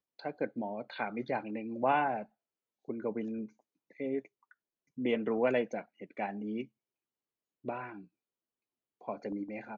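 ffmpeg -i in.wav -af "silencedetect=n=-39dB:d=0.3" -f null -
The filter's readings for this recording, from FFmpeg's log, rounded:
silence_start: 2.23
silence_end: 2.89 | silence_duration: 0.67
silence_start: 3.46
silence_end: 4.00 | silence_duration: 0.54
silence_start: 4.19
silence_end: 4.98 | silence_duration: 0.79
silence_start: 6.63
silence_end: 7.66 | silence_duration: 1.03
silence_start: 7.96
silence_end: 9.08 | silence_duration: 1.12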